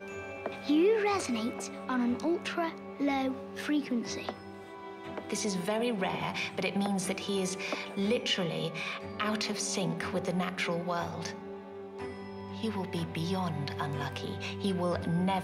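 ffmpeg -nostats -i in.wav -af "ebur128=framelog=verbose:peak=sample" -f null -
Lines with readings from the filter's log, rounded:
Integrated loudness:
  I:         -32.7 LUFS
  Threshold: -42.9 LUFS
Loudness range:
  LRA:         4.5 LU
  Threshold: -53.3 LUFS
  LRA low:   -35.7 LUFS
  LRA high:  -31.1 LUFS
Sample peak:
  Peak:      -14.0 dBFS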